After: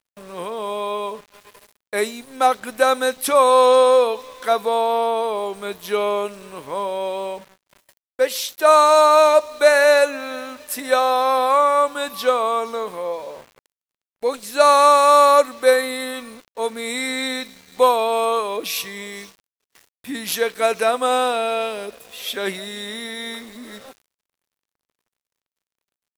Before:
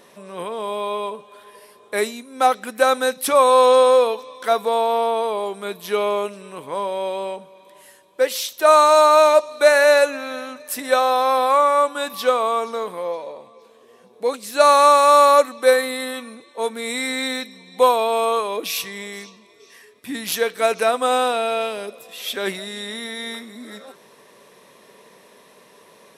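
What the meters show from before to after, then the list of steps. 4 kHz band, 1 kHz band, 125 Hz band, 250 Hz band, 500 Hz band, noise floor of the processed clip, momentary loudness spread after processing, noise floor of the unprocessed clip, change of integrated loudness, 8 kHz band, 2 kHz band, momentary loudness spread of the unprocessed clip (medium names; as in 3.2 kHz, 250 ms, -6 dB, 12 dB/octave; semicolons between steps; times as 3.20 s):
0.0 dB, 0.0 dB, no reading, 0.0 dB, 0.0 dB, under -85 dBFS, 19 LU, -51 dBFS, 0.0 dB, 0.0 dB, 0.0 dB, 19 LU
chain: small samples zeroed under -41 dBFS; gate with hold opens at -36 dBFS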